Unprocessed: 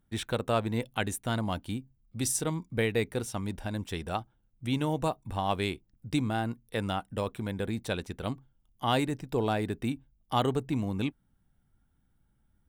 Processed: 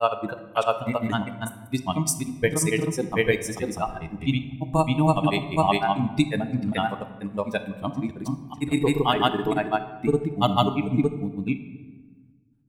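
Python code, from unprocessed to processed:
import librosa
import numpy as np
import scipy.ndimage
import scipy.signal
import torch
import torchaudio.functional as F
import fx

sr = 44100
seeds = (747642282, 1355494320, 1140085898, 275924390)

y = fx.noise_reduce_blind(x, sr, reduce_db=16)
y = fx.granulator(y, sr, seeds[0], grain_ms=100.0, per_s=20.0, spray_ms=531.0, spread_st=0)
y = fx.room_shoebox(y, sr, seeds[1], volume_m3=1000.0, walls='mixed', distance_m=0.58)
y = y * 10.0 ** (9.0 / 20.0)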